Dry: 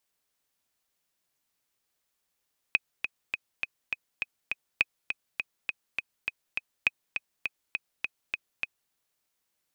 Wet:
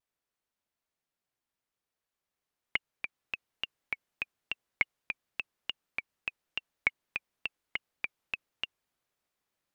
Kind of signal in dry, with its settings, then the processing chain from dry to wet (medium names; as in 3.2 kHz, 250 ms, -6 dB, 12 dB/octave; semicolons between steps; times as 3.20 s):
metronome 204 bpm, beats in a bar 7, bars 3, 2.52 kHz, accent 7.5 dB -8.5 dBFS
treble shelf 3.5 kHz -10 dB; gain riding 2 s; vibrato with a chosen wave saw down 5.8 Hz, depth 250 cents